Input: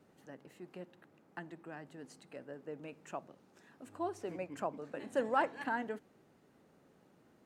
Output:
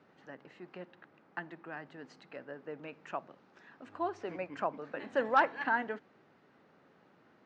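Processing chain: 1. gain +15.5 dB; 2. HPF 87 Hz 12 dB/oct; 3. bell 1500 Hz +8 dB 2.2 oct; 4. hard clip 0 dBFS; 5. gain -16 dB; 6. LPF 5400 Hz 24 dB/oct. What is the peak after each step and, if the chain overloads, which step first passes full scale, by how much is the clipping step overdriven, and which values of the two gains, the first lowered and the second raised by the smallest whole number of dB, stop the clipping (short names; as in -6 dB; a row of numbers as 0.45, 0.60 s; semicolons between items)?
-2.5, -3.0, +3.5, 0.0, -16.0, -15.5 dBFS; step 3, 3.5 dB; step 1 +11.5 dB, step 5 -12 dB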